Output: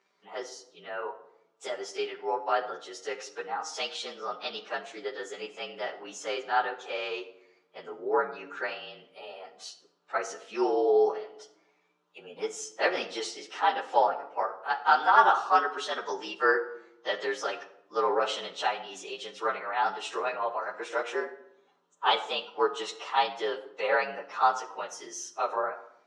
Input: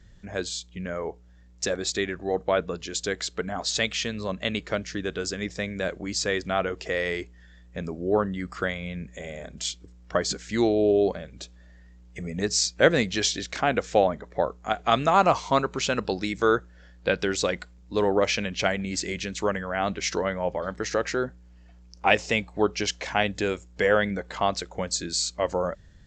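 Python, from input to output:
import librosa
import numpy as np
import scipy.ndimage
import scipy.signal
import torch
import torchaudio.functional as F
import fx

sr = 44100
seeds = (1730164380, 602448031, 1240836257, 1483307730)

y = fx.partial_stretch(x, sr, pct=111)
y = fx.cabinet(y, sr, low_hz=410.0, low_slope=24, high_hz=5600.0, hz=(590.0, 930.0, 1300.0, 2200.0, 4700.0), db=(-7, 6, 7, -8, -7))
y = fx.room_shoebox(y, sr, seeds[0], volume_m3=2300.0, walls='furnished', distance_m=1.2)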